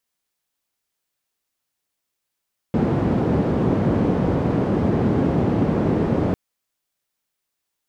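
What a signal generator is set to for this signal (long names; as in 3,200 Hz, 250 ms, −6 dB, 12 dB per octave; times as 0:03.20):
band-limited noise 89–310 Hz, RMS −19.5 dBFS 3.60 s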